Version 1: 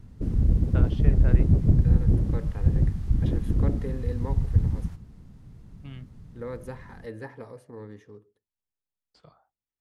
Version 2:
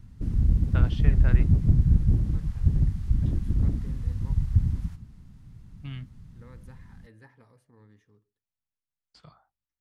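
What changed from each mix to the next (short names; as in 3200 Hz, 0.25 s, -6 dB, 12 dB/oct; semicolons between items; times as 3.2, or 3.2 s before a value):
first voice +5.5 dB; second voice -10.0 dB; master: add bell 480 Hz -10 dB 1.5 oct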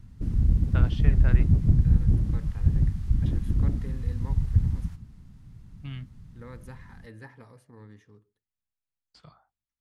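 second voice +7.5 dB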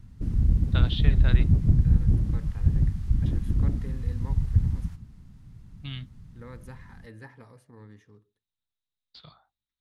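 first voice: add synth low-pass 3800 Hz, resonance Q 9.6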